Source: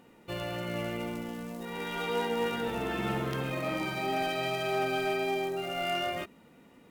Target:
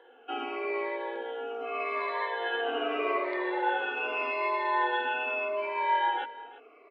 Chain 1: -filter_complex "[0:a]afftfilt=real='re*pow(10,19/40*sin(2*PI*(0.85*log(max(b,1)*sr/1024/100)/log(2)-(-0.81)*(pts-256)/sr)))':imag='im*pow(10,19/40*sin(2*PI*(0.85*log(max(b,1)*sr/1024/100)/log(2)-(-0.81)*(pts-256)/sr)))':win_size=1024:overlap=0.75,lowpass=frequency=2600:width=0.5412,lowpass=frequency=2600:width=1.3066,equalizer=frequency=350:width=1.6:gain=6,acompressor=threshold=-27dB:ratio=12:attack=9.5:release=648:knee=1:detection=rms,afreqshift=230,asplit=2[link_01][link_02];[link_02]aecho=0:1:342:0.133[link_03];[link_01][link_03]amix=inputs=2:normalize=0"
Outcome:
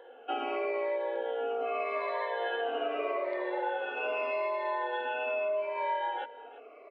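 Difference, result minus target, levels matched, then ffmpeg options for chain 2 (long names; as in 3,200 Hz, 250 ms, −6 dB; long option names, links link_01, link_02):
downward compressor: peak gain reduction +9 dB; 250 Hz band −2.5 dB
-filter_complex "[0:a]afftfilt=real='re*pow(10,19/40*sin(2*PI*(0.85*log(max(b,1)*sr/1024/100)/log(2)-(-0.81)*(pts-256)/sr)))':imag='im*pow(10,19/40*sin(2*PI*(0.85*log(max(b,1)*sr/1024/100)/log(2)-(-0.81)*(pts-256)/sr)))':win_size=1024:overlap=0.75,lowpass=frequency=2600:width=0.5412,lowpass=frequency=2600:width=1.3066,equalizer=frequency=350:width=1.6:gain=-5.5,afreqshift=230,asplit=2[link_01][link_02];[link_02]aecho=0:1:342:0.133[link_03];[link_01][link_03]amix=inputs=2:normalize=0"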